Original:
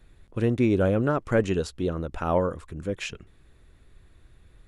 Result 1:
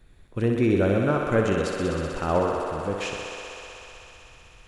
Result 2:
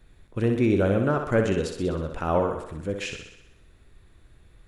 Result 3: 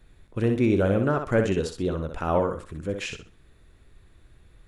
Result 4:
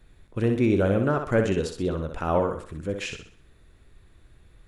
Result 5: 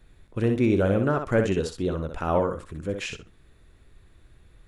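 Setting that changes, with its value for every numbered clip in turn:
thinning echo, feedback: 91%, 60%, 26%, 40%, 16%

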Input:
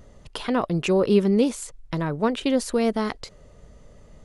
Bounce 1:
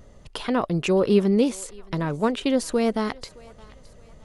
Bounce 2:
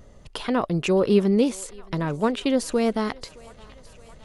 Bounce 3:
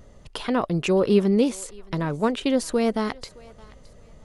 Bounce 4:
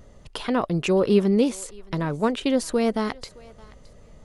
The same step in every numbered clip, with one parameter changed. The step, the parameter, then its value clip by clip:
thinning echo, feedback: 46%, 80%, 31%, 21%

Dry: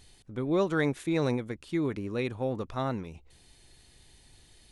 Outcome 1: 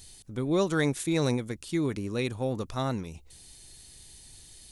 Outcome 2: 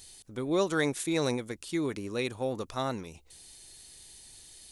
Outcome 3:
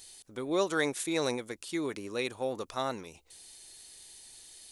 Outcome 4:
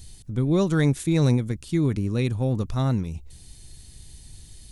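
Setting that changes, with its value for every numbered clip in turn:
tone controls, bass: +3 dB, -5 dB, -14 dB, +15 dB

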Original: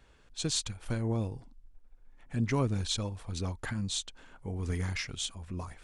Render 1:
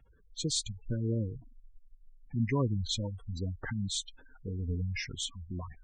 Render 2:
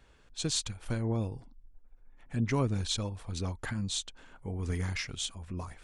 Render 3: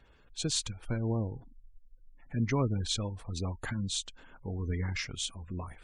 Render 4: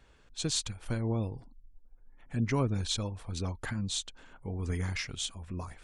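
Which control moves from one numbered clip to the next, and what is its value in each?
spectral gate, under each frame's peak: -15 dB, -55 dB, -30 dB, -45 dB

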